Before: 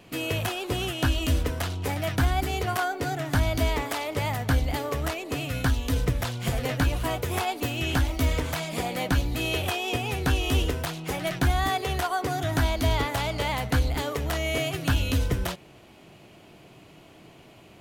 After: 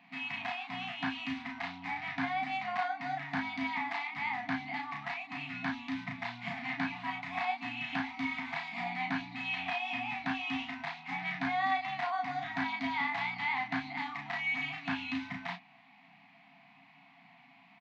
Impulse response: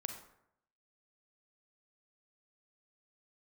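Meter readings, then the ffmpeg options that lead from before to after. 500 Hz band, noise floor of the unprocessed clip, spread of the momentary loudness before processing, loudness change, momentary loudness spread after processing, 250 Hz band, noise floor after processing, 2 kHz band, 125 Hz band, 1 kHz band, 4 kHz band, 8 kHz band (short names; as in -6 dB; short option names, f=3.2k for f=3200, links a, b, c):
-16.5 dB, -52 dBFS, 5 LU, -8.0 dB, 6 LU, -8.0 dB, -60 dBFS, -2.5 dB, -23.0 dB, -4.5 dB, -10.5 dB, under -25 dB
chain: -filter_complex "[0:a]highpass=f=210:w=0.5412,highpass=f=210:w=1.3066,equalizer=f=230:t=q:w=4:g=-5,equalizer=f=550:t=q:w=4:g=-3,equalizer=f=1.4k:t=q:w=4:g=-8,equalizer=f=2.1k:t=q:w=4:g=7,equalizer=f=3.1k:t=q:w=4:g=-8,lowpass=f=3.6k:w=0.5412,lowpass=f=3.6k:w=1.3066,afftfilt=real='re*(1-between(b*sr/4096,290,670))':imag='im*(1-between(b*sr/4096,290,670))':win_size=4096:overlap=0.75,asplit=2[a][b];[b]adelay=34,volume=-3dB[c];[a][c]amix=inputs=2:normalize=0,volume=-5dB"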